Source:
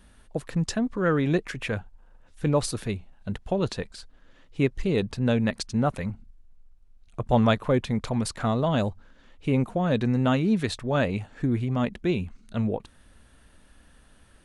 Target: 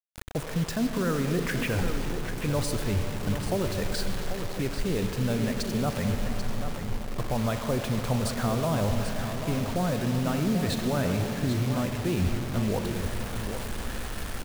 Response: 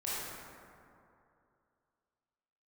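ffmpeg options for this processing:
-filter_complex "[0:a]highshelf=f=2500:g=-7.5,dynaudnorm=f=110:g=3:m=4.73,equalizer=f=320:w=0.57:g=-3,areverse,acompressor=threshold=0.0355:ratio=6,areverse,alimiter=level_in=1.33:limit=0.0631:level=0:latency=1:release=61,volume=0.75,asplit=2[s0][s1];[s1]lowpass=f=4100:w=0.5412,lowpass=f=4100:w=1.3066[s2];[1:a]atrim=start_sample=2205,asetrate=24255,aresample=44100[s3];[s2][s3]afir=irnorm=-1:irlink=0,volume=0.224[s4];[s0][s4]amix=inputs=2:normalize=0,acrusher=bits=6:mix=0:aa=0.000001,aecho=1:1:789:0.355,volume=1.78"

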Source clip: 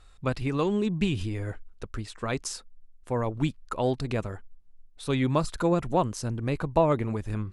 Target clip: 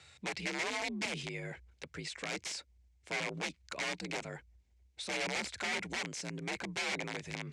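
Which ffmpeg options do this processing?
-af "highshelf=f=2800:g=9,aeval=exprs='(mod(11.9*val(0)+1,2)-1)/11.9':c=same,alimiter=level_in=2.24:limit=0.0631:level=0:latency=1:release=53,volume=0.447,afreqshift=51,highpass=190,equalizer=f=260:t=q:w=4:g=-6,equalizer=f=1200:t=q:w=4:g=-7,equalizer=f=2200:t=q:w=4:g=10,lowpass=f=7700:w=0.5412,lowpass=f=7700:w=1.3066"

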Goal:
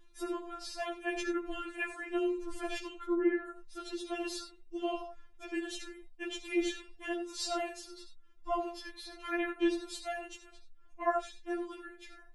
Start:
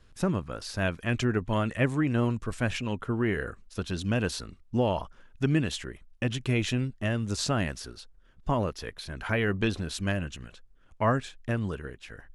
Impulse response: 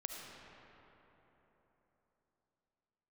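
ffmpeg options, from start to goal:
-filter_complex "[0:a]asettb=1/sr,asplit=3[s0][s1][s2];[s0]atrim=end=3.064[s3];[s1]atrim=start=3.06:end=3.46,asetpts=PTS-STARTPTS,afade=t=in:d=0.004:c=qsin,afade=t=out:st=0.396:d=0.004:c=qsin,lowpass=1900[s4];[s2]atrim=start=3.456[s5];[s3][s4]acrossfade=d=0.004:c1=hsin:c2=qsin[s6];[s6][s5]acrossfade=d=0.004:c1=qsin:c2=hsin[s7];[1:a]atrim=start_sample=2205,atrim=end_sample=4410[s8];[s7][s8]afir=irnorm=-1:irlink=0,afftfilt=real='re*4*eq(mod(b,16),0)':imag='im*4*eq(mod(b,16),0)':win_size=2048:overlap=0.75"

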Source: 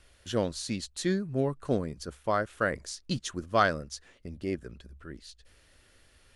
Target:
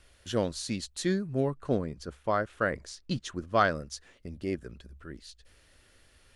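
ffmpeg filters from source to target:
-filter_complex "[0:a]asettb=1/sr,asplit=3[s0][s1][s2];[s0]atrim=end=1.504[s3];[s1]atrim=start=1.5:end=3.75,asetpts=PTS-STARTPTS,afade=t=in:d=0.004:c=qsin,afade=t=out:st=2.246:d=0.004:c=qsin,highshelf=f=6300:g=-10.5[s4];[s2]atrim=start=3.746[s5];[s3][s4]acrossfade=d=0.004:c1=hsin:c2=qsin[s6];[s6][s5]acrossfade=d=0.004:c1=qsin:c2=hsin"

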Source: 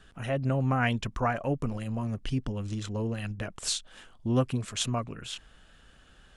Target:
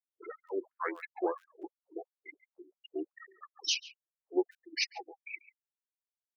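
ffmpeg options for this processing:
-filter_complex "[0:a]asplit=2[s0][s1];[s1]asplit=3[s2][s3][s4];[s2]adelay=266,afreqshift=-35,volume=0.0668[s5];[s3]adelay=532,afreqshift=-70,volume=0.0327[s6];[s4]adelay=798,afreqshift=-105,volume=0.016[s7];[s5][s6][s7]amix=inputs=3:normalize=0[s8];[s0][s8]amix=inputs=2:normalize=0,asetrate=31183,aresample=44100,atempo=1.41421,equalizer=f=350:t=o:w=0.54:g=10,afftfilt=real='re*gte(hypot(re,im),0.0447)':imag='im*gte(hypot(re,im),0.0447)':win_size=1024:overlap=0.75,asplit=2[s9][s10];[s10]adelay=140,highpass=300,lowpass=3400,asoftclip=type=hard:threshold=0.126,volume=0.141[s11];[s9][s11]amix=inputs=2:normalize=0,asplit=2[s12][s13];[s13]acompressor=threshold=0.02:ratio=10,volume=0.841[s14];[s12][s14]amix=inputs=2:normalize=0,aemphasis=mode=production:type=75fm,afftfilt=real='re*gte(b*sr/1024,260*pow(1500/260,0.5+0.5*sin(2*PI*2.9*pts/sr)))':imag='im*gte(b*sr/1024,260*pow(1500/260,0.5+0.5*sin(2*PI*2.9*pts/sr)))':win_size=1024:overlap=0.75,volume=0.447"

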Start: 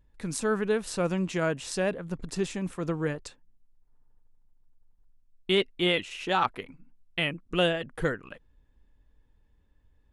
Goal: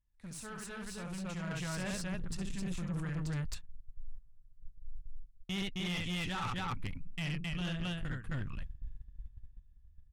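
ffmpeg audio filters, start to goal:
-filter_complex "[0:a]asubboost=boost=8:cutoff=170,asplit=2[s0][s1];[s1]aecho=0:1:67.06|265.3:0.562|0.891[s2];[s0][s2]amix=inputs=2:normalize=0,agate=range=0.2:threshold=0.0126:ratio=16:detection=peak,equalizer=f=390:t=o:w=1.6:g=-10.5,areverse,acompressor=threshold=0.0224:ratio=16,areverse,asoftclip=type=tanh:threshold=0.0158,dynaudnorm=f=240:g=11:m=2.66,volume=0.596"

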